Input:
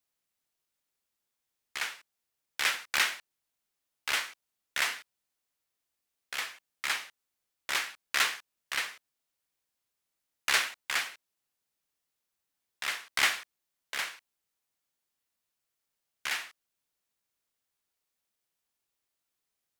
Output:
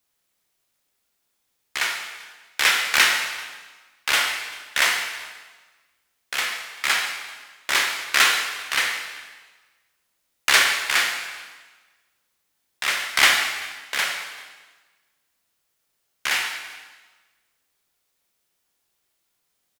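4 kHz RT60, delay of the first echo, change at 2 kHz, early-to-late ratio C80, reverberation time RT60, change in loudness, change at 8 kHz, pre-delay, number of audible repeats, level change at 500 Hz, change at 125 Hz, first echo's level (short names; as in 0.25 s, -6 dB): 1.2 s, 0.389 s, +11.0 dB, 6.0 dB, 1.3 s, +10.5 dB, +11.0 dB, 20 ms, 1, +11.5 dB, n/a, -23.0 dB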